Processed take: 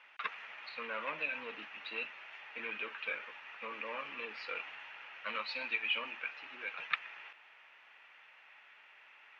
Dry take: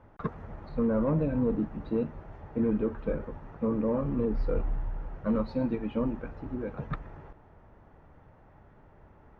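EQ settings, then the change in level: resonant high-pass 2600 Hz, resonance Q 4.1; air absorption 110 m; +12.5 dB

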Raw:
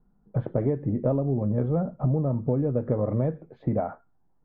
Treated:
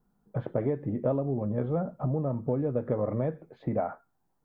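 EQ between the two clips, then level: tilt +2 dB/oct; 0.0 dB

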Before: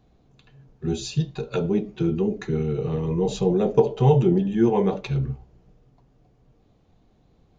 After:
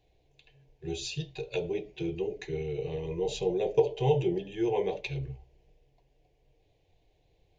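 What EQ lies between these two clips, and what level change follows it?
bell 2400 Hz +10 dB 1.2 oct; notches 60/120 Hz; fixed phaser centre 530 Hz, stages 4; -5.5 dB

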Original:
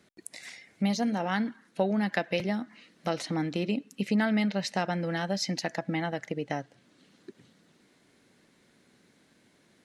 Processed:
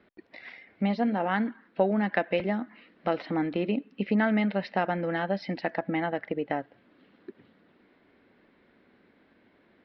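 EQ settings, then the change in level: elliptic low-pass 5400 Hz; air absorption 460 m; bell 140 Hz -10.5 dB 0.86 oct; +6.0 dB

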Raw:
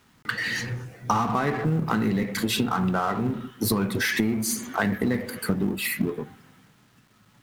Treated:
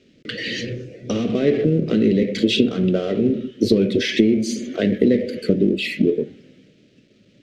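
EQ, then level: air absorption 160 m; dynamic EQ 3200 Hz, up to +6 dB, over -53 dBFS, Q 3.9; EQ curve 120 Hz 0 dB, 360 Hz +13 dB, 590 Hz +11 dB, 870 Hz -25 dB, 2400 Hz +6 dB, 6300 Hz +9 dB, 12000 Hz +6 dB; 0.0 dB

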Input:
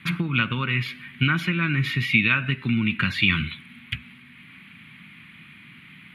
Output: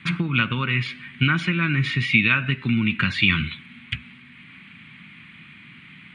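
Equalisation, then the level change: brick-wall FIR low-pass 9400 Hz; +1.5 dB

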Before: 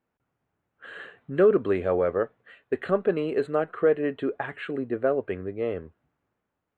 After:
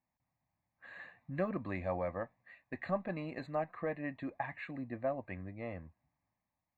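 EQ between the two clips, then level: fixed phaser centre 2100 Hz, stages 8; -4.5 dB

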